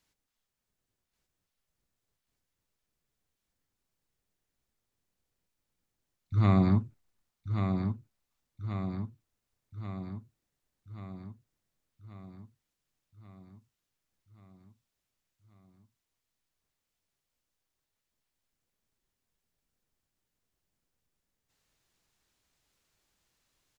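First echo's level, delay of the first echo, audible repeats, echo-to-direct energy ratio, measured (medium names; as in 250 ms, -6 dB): -6.5 dB, 1134 ms, 7, -4.5 dB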